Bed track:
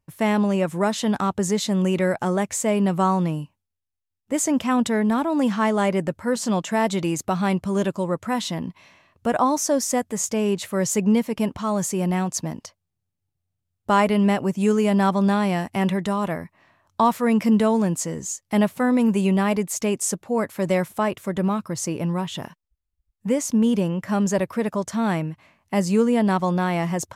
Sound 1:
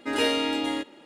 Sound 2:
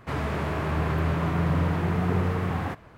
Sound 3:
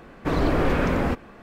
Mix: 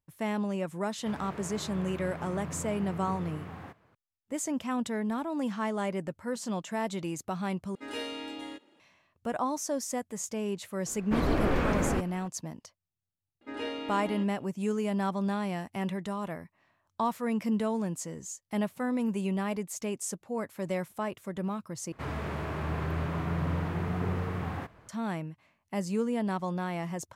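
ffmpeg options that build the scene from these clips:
-filter_complex "[2:a]asplit=2[s0][s1];[1:a]asplit=2[s2][s3];[0:a]volume=0.282[s4];[s0]highpass=95[s5];[s3]aemphasis=mode=reproduction:type=75fm[s6];[s4]asplit=3[s7][s8][s9];[s7]atrim=end=7.754[s10];[s2]atrim=end=1.05,asetpts=PTS-STARTPTS,volume=0.224[s11];[s8]atrim=start=8.796:end=21.924[s12];[s1]atrim=end=2.97,asetpts=PTS-STARTPTS,volume=0.473[s13];[s9]atrim=start=24.886[s14];[s5]atrim=end=2.97,asetpts=PTS-STARTPTS,volume=0.2,afade=t=in:d=0.004:c=hsin,afade=t=out:st=2.966:d=0.004:c=hsin,adelay=980[s15];[3:a]atrim=end=1.42,asetpts=PTS-STARTPTS,volume=0.531,afade=t=in:d=0.004:c=hsin,afade=t=out:st=1.416:d=0.004:c=hsin,adelay=10860[s16];[s6]atrim=end=1.05,asetpts=PTS-STARTPTS,volume=0.266,afade=t=in:d=0.004:c=hsin,afade=t=out:st=1.046:d=0.004:c=hsin,adelay=13410[s17];[s10][s11]acrossfade=d=0.004:c1=hsin:c2=hsin[s18];[s18][s12]acrossfade=d=0.004:c1=hsin:c2=hsin[s19];[s19][s13]acrossfade=d=0.004:c1=hsin:c2=hsin[s20];[s20][s14]acrossfade=d=0.004:c1=hsin:c2=hsin[s21];[s21][s15][s16][s17]amix=inputs=4:normalize=0"

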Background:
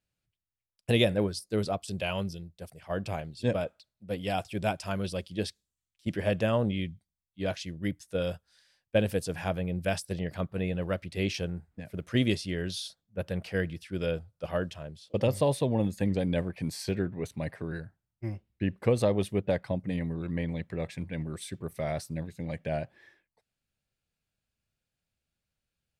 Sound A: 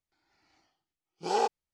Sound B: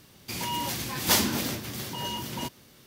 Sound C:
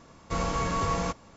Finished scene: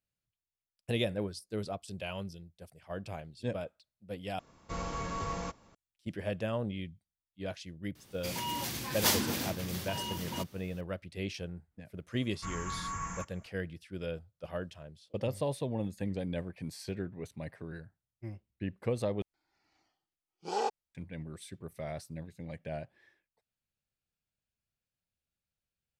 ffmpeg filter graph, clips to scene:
-filter_complex "[3:a]asplit=2[s0][s1];[0:a]volume=0.422[s2];[s1]firequalizer=gain_entry='entry(170,0);entry(570,-17);entry(970,2);entry(1700,6);entry(4200,-15);entry(6700,10)':delay=0.05:min_phase=1[s3];[s2]asplit=3[s4][s5][s6];[s4]atrim=end=4.394[s7];[s0]atrim=end=1.36,asetpts=PTS-STARTPTS,volume=0.376[s8];[s5]atrim=start=5.746:end=19.224[s9];[1:a]atrim=end=1.73,asetpts=PTS-STARTPTS,volume=0.562[s10];[s6]atrim=start=20.946[s11];[2:a]atrim=end=2.86,asetpts=PTS-STARTPTS,volume=0.562,afade=t=in:d=0.004:c=hsin,afade=t=out:st=2.856:d=0.004:c=hsin,adelay=7950[s12];[s3]atrim=end=1.36,asetpts=PTS-STARTPTS,volume=0.266,afade=t=in:d=0.004:c=hsin,afade=t=out:st=1.356:d=0.004:c=hsin,adelay=12120[s13];[s7][s8]acrossfade=d=0.004:c1=hsin:c2=hsin[s14];[s14][s9]acrossfade=d=0.004:c1=hsin:c2=hsin[s15];[s15][s10]acrossfade=d=0.004:c1=hsin:c2=hsin[s16];[s16][s11]acrossfade=d=0.004:c1=hsin:c2=hsin[s17];[s17][s12][s13]amix=inputs=3:normalize=0"

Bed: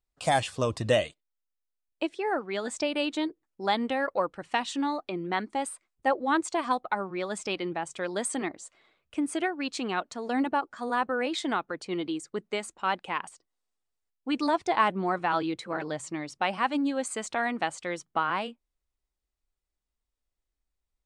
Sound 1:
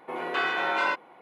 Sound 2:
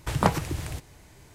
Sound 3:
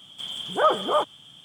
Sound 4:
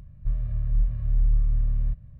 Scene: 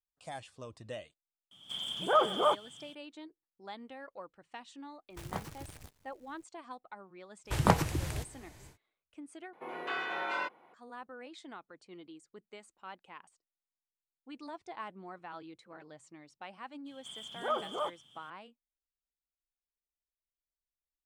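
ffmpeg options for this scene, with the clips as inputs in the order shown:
-filter_complex "[3:a]asplit=2[s0][s1];[2:a]asplit=2[s2][s3];[0:a]volume=0.112[s4];[s0]dynaudnorm=f=100:g=3:m=2[s5];[s2]acrusher=bits=6:dc=4:mix=0:aa=0.000001[s6];[s4]asplit=2[s7][s8];[s7]atrim=end=9.534[s9];[1:a]atrim=end=1.21,asetpts=PTS-STARTPTS,volume=0.355[s10];[s8]atrim=start=10.736[s11];[s5]atrim=end=1.44,asetpts=PTS-STARTPTS,volume=0.299,afade=t=in:d=0.004:c=hsin,afade=t=out:st=1.436:d=0.004:c=hsin,adelay=1510[s12];[s6]atrim=end=1.34,asetpts=PTS-STARTPTS,volume=0.133,afade=t=in:d=0.004:c=hsin,afade=t=out:st=1.336:d=0.004:c=hsin,adelay=5100[s13];[s3]atrim=end=1.34,asetpts=PTS-STARTPTS,volume=0.75,afade=t=in:d=0.1,afade=t=out:st=1.24:d=0.1,adelay=7440[s14];[s1]atrim=end=1.44,asetpts=PTS-STARTPTS,volume=0.224,afade=t=in:d=0.004:c=hsin,afade=t=out:st=1.436:d=0.004:c=hsin,adelay=16860[s15];[s9][s10]acrossfade=d=0.004:c1=hsin:c2=hsin[s16];[s16][s11]acrossfade=d=0.004:c1=hsin:c2=hsin[s17];[s17][s12][s13][s14][s15]amix=inputs=5:normalize=0"

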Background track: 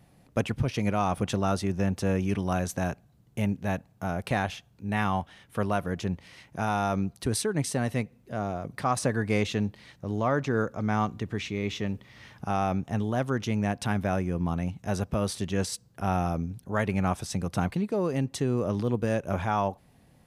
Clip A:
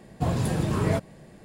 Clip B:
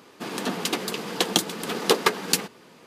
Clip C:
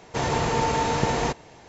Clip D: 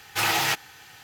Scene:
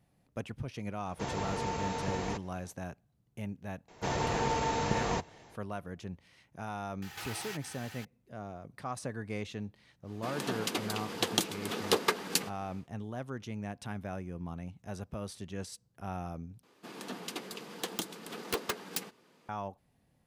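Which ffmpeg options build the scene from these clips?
-filter_complex "[3:a]asplit=2[s0][s1];[2:a]asplit=2[s2][s3];[0:a]volume=0.251[s4];[4:a]acompressor=threshold=0.0112:ratio=6:attack=3.2:release=140:knee=1:detection=peak[s5];[s3]aeval=exprs='(mod(2.37*val(0)+1,2)-1)/2.37':c=same[s6];[s4]asplit=2[s7][s8];[s7]atrim=end=16.634[s9];[s6]atrim=end=2.86,asetpts=PTS-STARTPTS,volume=0.211[s10];[s8]atrim=start=19.486[s11];[s0]atrim=end=1.68,asetpts=PTS-STARTPTS,volume=0.251,afade=t=in:d=0.004:c=hsin,afade=t=out:st=1.676:d=0.004:c=hsin,adelay=1050[s12];[s1]atrim=end=1.68,asetpts=PTS-STARTPTS,volume=0.422,afade=t=in:d=0.004:c=hsin,afade=t=out:st=1.676:d=0.004:c=hsin,adelay=3880[s13];[s5]atrim=end=1.03,asetpts=PTS-STARTPTS,volume=0.841,afade=t=in:d=0.004:c=hsin,afade=t=out:st=1.026:d=0.004:c=hsin,adelay=7020[s14];[s2]atrim=end=2.86,asetpts=PTS-STARTPTS,volume=0.422,afade=t=in:d=0.1,afade=t=out:st=2.76:d=0.1,adelay=441882S[s15];[s9][s10]acrossfade=d=0.004:c1=hsin:c2=hsin[s16];[s16][s11]acrossfade=d=0.004:c1=hsin:c2=hsin[s17];[s17][s12][s13][s14][s15]amix=inputs=5:normalize=0"

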